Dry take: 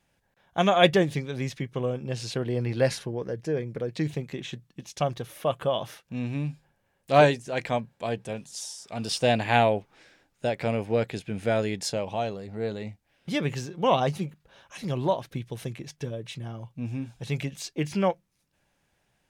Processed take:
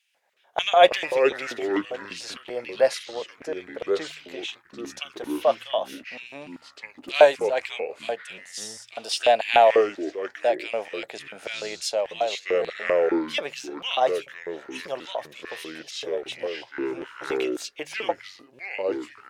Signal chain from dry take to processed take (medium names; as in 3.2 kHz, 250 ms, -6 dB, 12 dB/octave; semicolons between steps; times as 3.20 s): LFO high-pass square 3.4 Hz 620–2700 Hz; de-hum 76.8 Hz, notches 2; ever faster or slower copies 137 ms, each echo -5 st, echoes 2, each echo -6 dB